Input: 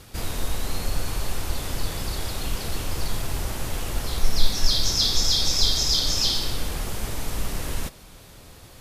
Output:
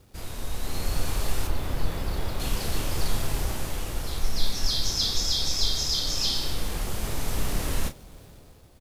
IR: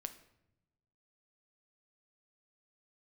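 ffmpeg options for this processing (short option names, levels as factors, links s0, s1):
-filter_complex "[0:a]acrossover=split=800[s0][s1];[s1]aeval=exprs='sgn(val(0))*max(abs(val(0))-0.00211,0)':c=same[s2];[s0][s2]amix=inputs=2:normalize=0,asettb=1/sr,asplit=3[s3][s4][s5];[s3]atrim=end=1.474[s6];[s4]atrim=start=1.47:end=2.4,asetpts=PTS-STARTPTS,afade=t=in:d=0.004:c=qsin,afade=t=out:st=0.926:d=0.004:c=qsin,equalizer=f=8100:w=0.4:g=-10.5[s7];[s5]atrim=start=2.396[s8];[s6][s7]acrossfade=d=0.004:c1=hsin:c2=qsin[s9];[s9][s8]acrossfade=d=0.004:c1=qsin:c2=hsin,aecho=1:1:30|44:0.355|0.141,dynaudnorm=f=130:g=11:m=2.99,volume=0.398"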